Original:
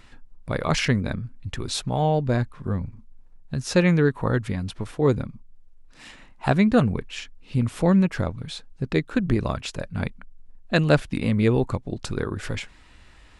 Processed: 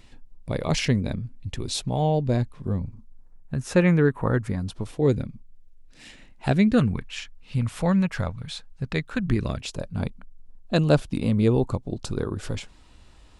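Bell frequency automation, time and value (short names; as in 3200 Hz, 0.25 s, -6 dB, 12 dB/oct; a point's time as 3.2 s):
bell -10 dB 1 oct
2.69 s 1400 Hz
3.62 s 4700 Hz
4.26 s 4700 Hz
5.09 s 1100 Hz
6.67 s 1100 Hz
7.1 s 330 Hz
9.15 s 330 Hz
9.75 s 1900 Hz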